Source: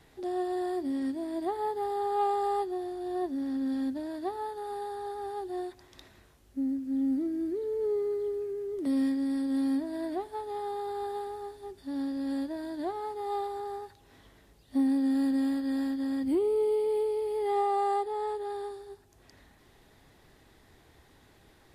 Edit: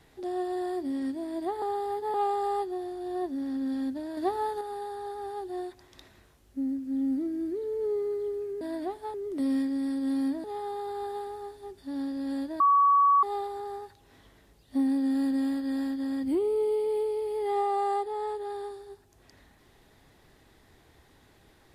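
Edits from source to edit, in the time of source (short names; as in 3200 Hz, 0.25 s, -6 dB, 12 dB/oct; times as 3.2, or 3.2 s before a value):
1.62–2.14 reverse
4.17–4.61 gain +5.5 dB
9.91–10.44 move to 8.61
12.6–13.23 bleep 1130 Hz -17.5 dBFS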